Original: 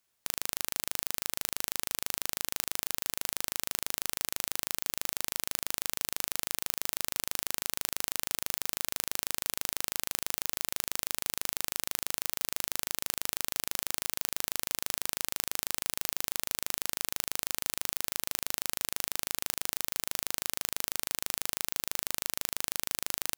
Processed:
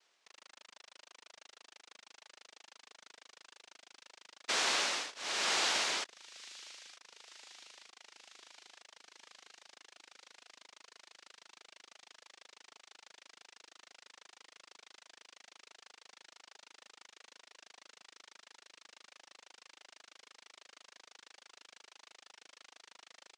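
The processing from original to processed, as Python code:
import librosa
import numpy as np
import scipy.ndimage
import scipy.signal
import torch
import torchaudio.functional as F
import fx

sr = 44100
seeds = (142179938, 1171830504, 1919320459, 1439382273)

p1 = fx.dereverb_blind(x, sr, rt60_s=0.86)
p2 = fx.over_compress(p1, sr, threshold_db=-42.0, ratio=-0.5)
p3 = fx.spec_paint(p2, sr, seeds[0], shape='rise', start_s=4.48, length_s=1.56, low_hz=770.0, high_hz=4400.0, level_db=-35.0)
p4 = fx.fixed_phaser(p3, sr, hz=1600.0, stages=6)
p5 = fx.noise_vocoder(p4, sr, seeds[1], bands=1)
p6 = fx.bandpass_edges(p5, sr, low_hz=410.0, high_hz=5600.0)
p7 = p6 + fx.echo_wet_highpass(p6, sr, ms=926, feedback_pct=53, hz=2600.0, wet_db=-19.0, dry=0)
y = F.gain(torch.from_numpy(p7), 5.0).numpy()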